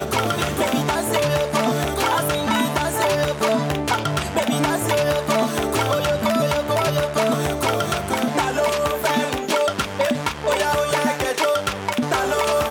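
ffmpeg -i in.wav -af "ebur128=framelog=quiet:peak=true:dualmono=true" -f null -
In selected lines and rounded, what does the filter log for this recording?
Integrated loudness:
  I:         -17.7 LUFS
  Threshold: -27.7 LUFS
Loudness range:
  LRA:         0.8 LU
  Threshold: -37.7 LUFS
  LRA low:   -18.1 LUFS
  LRA high:  -17.3 LUFS
True peak:
  Peak:       -7.3 dBFS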